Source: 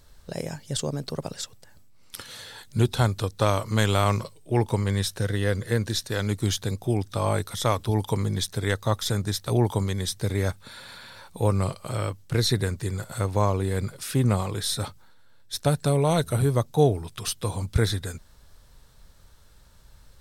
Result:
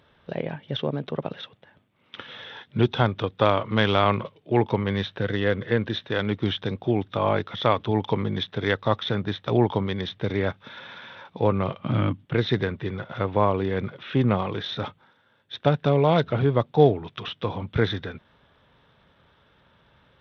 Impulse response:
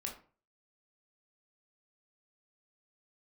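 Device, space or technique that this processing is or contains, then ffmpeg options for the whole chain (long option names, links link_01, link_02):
Bluetooth headset: -filter_complex "[0:a]asettb=1/sr,asplit=3[link_01][link_02][link_03];[link_01]atrim=end=11.794[link_04];[link_02]atrim=start=11.79:end=12.25,asetpts=PTS-STARTPTS,afade=type=in:duration=0.004:curve=qsin,afade=type=out:start_time=0.456:duration=0.004:curve=qsin,lowshelf=frequency=340:width_type=q:width=3:gain=7.5[link_05];[link_03]atrim=start=12.246[link_06];[link_04][link_05]acrossfade=duration=0.004:curve1=hsin:curve2=qsin[link_07];[link_07][link_06]acrossfade=duration=0.004:curve1=qsin:curve2=hsin,highpass=150,aresample=8000,aresample=44100,volume=3.5dB" -ar 32000 -c:a sbc -b:a 64k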